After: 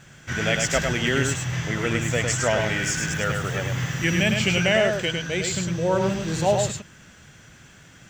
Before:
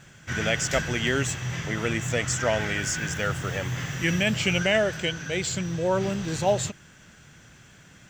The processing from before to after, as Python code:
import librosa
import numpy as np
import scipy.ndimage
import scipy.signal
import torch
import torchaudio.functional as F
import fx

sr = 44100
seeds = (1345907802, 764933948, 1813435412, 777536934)

p1 = x + fx.echo_single(x, sr, ms=104, db=-4.5, dry=0)
y = p1 * librosa.db_to_amplitude(1.5)